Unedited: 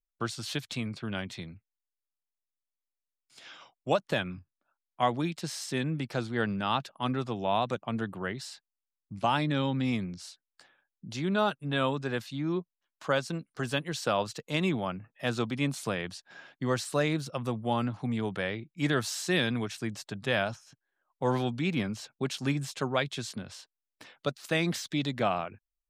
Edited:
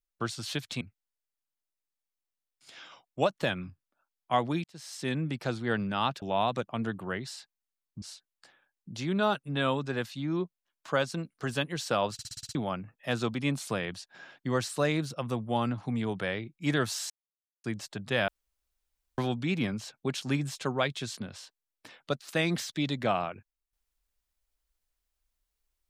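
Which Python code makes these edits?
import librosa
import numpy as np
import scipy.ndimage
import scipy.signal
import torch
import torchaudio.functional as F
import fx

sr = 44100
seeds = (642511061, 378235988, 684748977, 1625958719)

y = fx.edit(x, sr, fx.cut(start_s=0.81, length_s=0.69),
    fx.fade_in_span(start_s=5.33, length_s=0.49),
    fx.cut(start_s=6.91, length_s=0.45),
    fx.cut(start_s=9.16, length_s=1.02),
    fx.stutter_over(start_s=14.29, slice_s=0.06, count=7),
    fx.silence(start_s=19.26, length_s=0.54),
    fx.room_tone_fill(start_s=20.44, length_s=0.9), tone=tone)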